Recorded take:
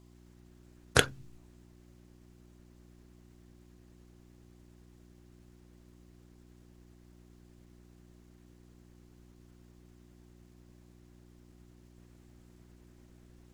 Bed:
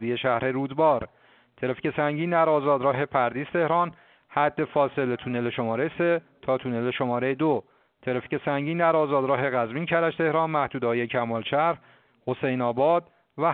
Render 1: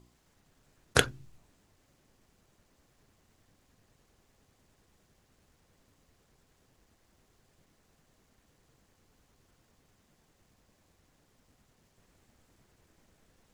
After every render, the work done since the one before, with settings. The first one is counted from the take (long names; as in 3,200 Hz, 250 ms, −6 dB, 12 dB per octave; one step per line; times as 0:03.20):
hum removal 60 Hz, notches 6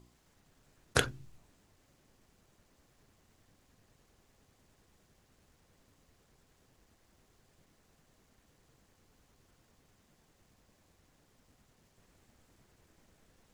brickwall limiter −7.5 dBFS, peak gain reduction 5.5 dB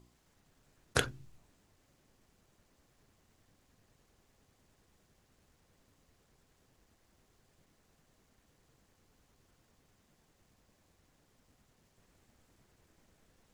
level −2 dB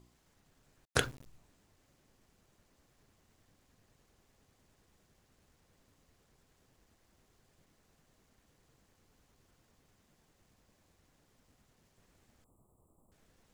0:00.85–0:01.26: centre clipping without the shift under −48.5 dBFS
0:12.44–0:13.12: Chebyshev band-stop filter 1,200–7,600 Hz, order 5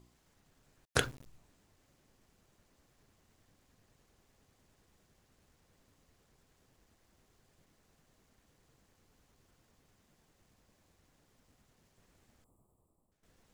0:12.35–0:13.23: fade out, to −14 dB